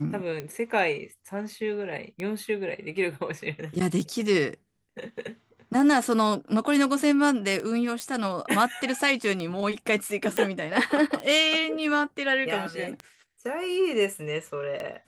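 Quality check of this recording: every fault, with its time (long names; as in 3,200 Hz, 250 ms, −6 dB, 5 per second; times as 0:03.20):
scratch tick 33 1/3 rpm −20 dBFS
0:08.00: click −16 dBFS
0:10.37: click −11 dBFS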